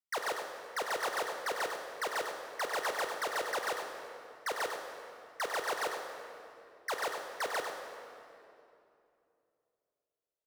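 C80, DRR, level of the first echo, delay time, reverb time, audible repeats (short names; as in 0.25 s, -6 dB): 3.5 dB, 2.0 dB, -7.5 dB, 99 ms, 2.7 s, 1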